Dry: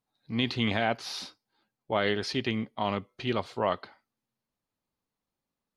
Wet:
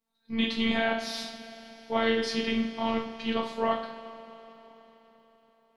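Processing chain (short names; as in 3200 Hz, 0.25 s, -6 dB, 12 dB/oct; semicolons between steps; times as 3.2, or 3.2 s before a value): two-slope reverb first 0.47 s, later 4.3 s, from -18 dB, DRR -0.5 dB; robotiser 226 Hz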